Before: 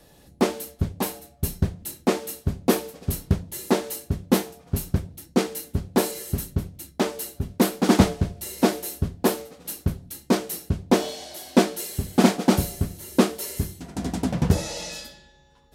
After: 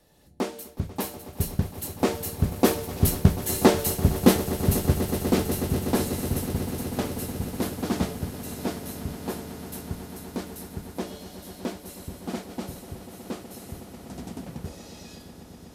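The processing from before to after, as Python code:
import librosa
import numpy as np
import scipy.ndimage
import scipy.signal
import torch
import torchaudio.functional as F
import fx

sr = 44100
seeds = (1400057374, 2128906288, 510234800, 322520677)

y = fx.recorder_agc(x, sr, target_db=-10.0, rise_db_per_s=12.0, max_gain_db=30)
y = fx.doppler_pass(y, sr, speed_mps=7, closest_m=6.8, pass_at_s=3.66)
y = fx.echo_swell(y, sr, ms=123, loudest=8, wet_db=-17)
y = y * librosa.db_to_amplitude(3.0)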